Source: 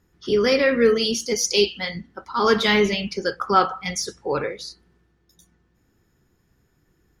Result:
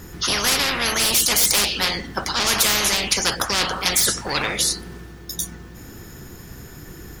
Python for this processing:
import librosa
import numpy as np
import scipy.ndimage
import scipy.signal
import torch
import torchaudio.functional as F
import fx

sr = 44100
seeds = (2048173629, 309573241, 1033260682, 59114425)

p1 = fx.high_shelf(x, sr, hz=6900.0, db=9.0)
p2 = 10.0 ** (-19.5 / 20.0) * np.tanh(p1 / 10.0 ** (-19.5 / 20.0))
p3 = p1 + (p2 * 10.0 ** (-7.0 / 20.0))
y = fx.spectral_comp(p3, sr, ratio=10.0)